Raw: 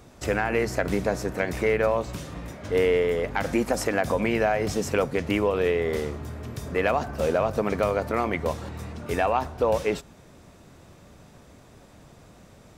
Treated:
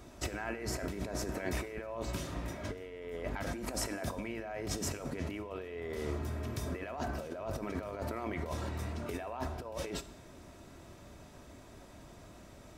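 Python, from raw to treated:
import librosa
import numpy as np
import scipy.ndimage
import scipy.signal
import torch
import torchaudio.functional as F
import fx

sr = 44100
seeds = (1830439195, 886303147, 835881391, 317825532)

y = fx.over_compress(x, sr, threshold_db=-31.0, ratio=-1.0)
y = y + 0.35 * np.pad(y, (int(3.1 * sr / 1000.0), 0))[:len(y)]
y = fx.rev_plate(y, sr, seeds[0], rt60_s=0.8, hf_ratio=1.0, predelay_ms=0, drr_db=12.5)
y = y * 10.0 ** (-8.0 / 20.0)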